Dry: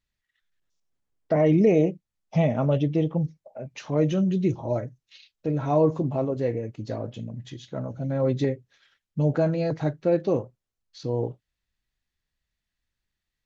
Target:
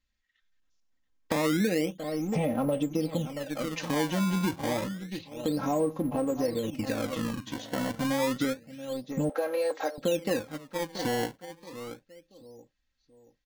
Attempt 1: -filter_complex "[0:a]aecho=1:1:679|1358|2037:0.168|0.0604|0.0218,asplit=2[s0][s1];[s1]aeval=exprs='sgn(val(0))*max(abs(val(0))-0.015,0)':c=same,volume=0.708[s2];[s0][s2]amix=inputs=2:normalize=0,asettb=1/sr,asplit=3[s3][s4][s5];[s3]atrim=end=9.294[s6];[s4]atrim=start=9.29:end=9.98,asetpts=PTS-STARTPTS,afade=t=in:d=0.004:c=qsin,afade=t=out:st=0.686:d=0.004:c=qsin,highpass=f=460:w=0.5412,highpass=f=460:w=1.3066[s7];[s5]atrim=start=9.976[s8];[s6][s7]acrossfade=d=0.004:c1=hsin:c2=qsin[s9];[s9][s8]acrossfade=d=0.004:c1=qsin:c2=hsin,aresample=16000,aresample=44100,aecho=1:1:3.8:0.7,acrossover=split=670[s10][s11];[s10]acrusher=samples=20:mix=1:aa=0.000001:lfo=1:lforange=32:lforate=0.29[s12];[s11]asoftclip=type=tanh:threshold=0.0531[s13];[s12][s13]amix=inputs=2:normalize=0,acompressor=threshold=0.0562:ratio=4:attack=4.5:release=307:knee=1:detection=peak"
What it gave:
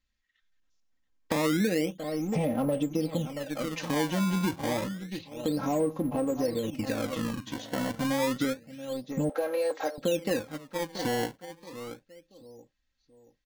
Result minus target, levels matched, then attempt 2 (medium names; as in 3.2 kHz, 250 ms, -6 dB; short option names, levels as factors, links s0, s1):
saturation: distortion +12 dB
-filter_complex "[0:a]aecho=1:1:679|1358|2037:0.168|0.0604|0.0218,asplit=2[s0][s1];[s1]aeval=exprs='sgn(val(0))*max(abs(val(0))-0.015,0)':c=same,volume=0.708[s2];[s0][s2]amix=inputs=2:normalize=0,asettb=1/sr,asplit=3[s3][s4][s5];[s3]atrim=end=9.294[s6];[s4]atrim=start=9.29:end=9.98,asetpts=PTS-STARTPTS,afade=t=in:d=0.004:c=qsin,afade=t=out:st=0.686:d=0.004:c=qsin,highpass=f=460:w=0.5412,highpass=f=460:w=1.3066[s7];[s5]atrim=start=9.976[s8];[s6][s7]acrossfade=d=0.004:c1=hsin:c2=qsin[s9];[s9][s8]acrossfade=d=0.004:c1=qsin:c2=hsin,aresample=16000,aresample=44100,aecho=1:1:3.8:0.7,acrossover=split=670[s10][s11];[s10]acrusher=samples=20:mix=1:aa=0.000001:lfo=1:lforange=32:lforate=0.29[s12];[s11]asoftclip=type=tanh:threshold=0.158[s13];[s12][s13]amix=inputs=2:normalize=0,acompressor=threshold=0.0562:ratio=4:attack=4.5:release=307:knee=1:detection=peak"